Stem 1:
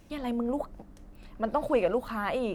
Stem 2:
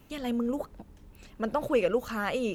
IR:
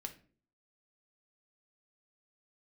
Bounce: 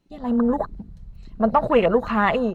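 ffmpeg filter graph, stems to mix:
-filter_complex "[0:a]equalizer=frequency=4100:width_type=o:width=0.29:gain=14,aecho=1:1:5.9:0.59,volume=-4dB[link_01];[1:a]lowpass=6900,adelay=0.9,volume=0.5dB[link_02];[link_01][link_02]amix=inputs=2:normalize=0,afwtdn=0.0141,dynaudnorm=framelen=110:gausssize=5:maxgain=9dB"

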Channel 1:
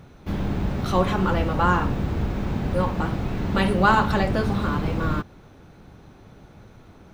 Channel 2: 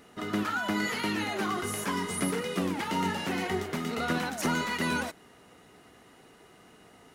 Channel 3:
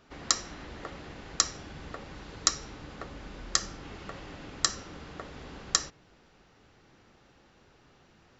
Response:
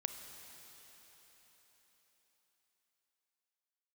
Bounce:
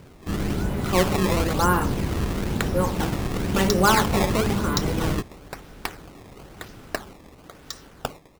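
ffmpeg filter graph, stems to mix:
-filter_complex "[0:a]equalizer=frequency=390:width_type=o:width=0.77:gain=4.5,volume=-1dB[link_01];[1:a]adelay=50,volume=-11dB[link_02];[2:a]acontrast=62,adelay=2300,volume=-10dB,asplit=2[link_03][link_04];[link_04]volume=-7.5dB,aecho=0:1:759:1[link_05];[link_01][link_02][link_03][link_05]amix=inputs=4:normalize=0,highshelf=frequency=7800:gain=5,acrusher=samples=17:mix=1:aa=0.000001:lfo=1:lforange=27.2:lforate=1"

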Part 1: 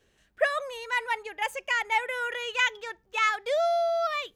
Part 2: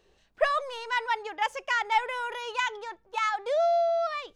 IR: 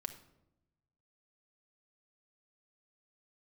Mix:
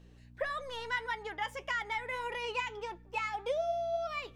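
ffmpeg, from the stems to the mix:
-filter_complex "[0:a]alimiter=limit=-21dB:level=0:latency=1,volume=-3dB,asplit=2[link_01][link_02];[link_02]volume=-11.5dB[link_03];[1:a]acompressor=threshold=-29dB:ratio=6,highshelf=frequency=5800:gain=-4,volume=2dB,asplit=2[link_04][link_05];[link_05]apad=whole_len=192128[link_06];[link_01][link_06]sidechaincompress=threshold=-39dB:ratio=4:attack=16:release=459[link_07];[2:a]atrim=start_sample=2205[link_08];[link_03][link_08]afir=irnorm=-1:irlink=0[link_09];[link_07][link_04][link_09]amix=inputs=3:normalize=0,aeval=exprs='val(0)+0.00316*(sin(2*PI*60*n/s)+sin(2*PI*2*60*n/s)/2+sin(2*PI*3*60*n/s)/3+sin(2*PI*4*60*n/s)/4+sin(2*PI*5*60*n/s)/5)':channel_layout=same,flanger=delay=5.7:depth=2.7:regen=64:speed=1.7:shape=sinusoidal"

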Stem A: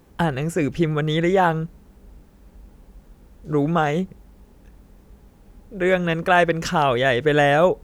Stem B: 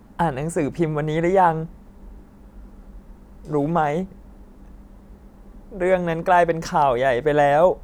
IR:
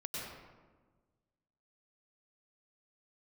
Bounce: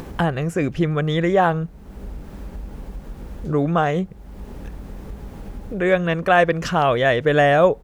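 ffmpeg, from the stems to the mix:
-filter_complex "[0:a]acompressor=mode=upward:threshold=-21dB:ratio=2.5,volume=1dB[link_01];[1:a]adelay=1.6,volume=-13dB[link_02];[link_01][link_02]amix=inputs=2:normalize=0,highshelf=frequency=4500:gain=-6.5"

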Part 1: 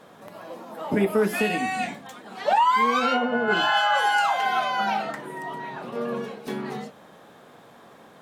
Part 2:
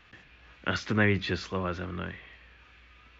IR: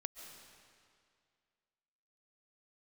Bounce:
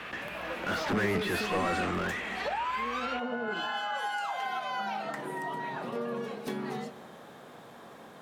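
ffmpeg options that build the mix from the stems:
-filter_complex "[0:a]alimiter=limit=-17dB:level=0:latency=1:release=261,acompressor=threshold=-32dB:ratio=4,volume=-2.5dB,asplit=2[link_01][link_02];[link_02]volume=-5.5dB[link_03];[1:a]asplit=2[link_04][link_05];[link_05]highpass=frequency=720:poles=1,volume=33dB,asoftclip=type=tanh:threshold=-19dB[link_06];[link_04][link_06]amix=inputs=2:normalize=0,lowpass=frequency=1400:poles=1,volume=-6dB,volume=-4dB[link_07];[2:a]atrim=start_sample=2205[link_08];[link_03][link_08]afir=irnorm=-1:irlink=0[link_09];[link_01][link_07][link_09]amix=inputs=3:normalize=0"

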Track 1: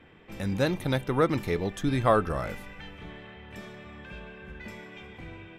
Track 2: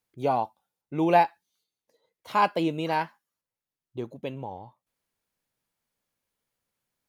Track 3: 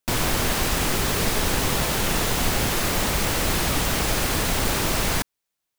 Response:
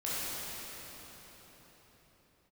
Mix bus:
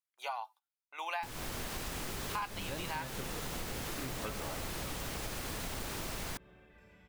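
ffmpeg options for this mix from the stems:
-filter_complex "[0:a]adelay=2100,volume=-10.5dB,asplit=2[link_01][link_02];[link_02]volume=-14.5dB[link_03];[1:a]agate=range=-17dB:threshold=-44dB:ratio=16:detection=peak,highpass=frequency=1000:width=0.5412,highpass=frequency=1000:width=1.3066,volume=3dB,asplit=2[link_04][link_05];[2:a]adelay=1150,volume=-11.5dB[link_06];[link_05]apad=whole_len=339019[link_07];[link_01][link_07]sidechaingate=range=-33dB:threshold=-56dB:ratio=16:detection=peak[link_08];[3:a]atrim=start_sample=2205[link_09];[link_03][link_09]afir=irnorm=-1:irlink=0[link_10];[link_08][link_04][link_06][link_10]amix=inputs=4:normalize=0,acompressor=threshold=-36dB:ratio=6"

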